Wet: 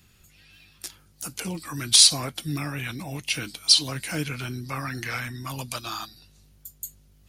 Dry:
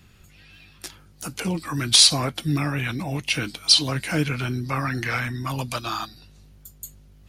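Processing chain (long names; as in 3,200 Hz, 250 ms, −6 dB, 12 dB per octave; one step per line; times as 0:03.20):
high-shelf EQ 4,300 Hz +10 dB
level −6.5 dB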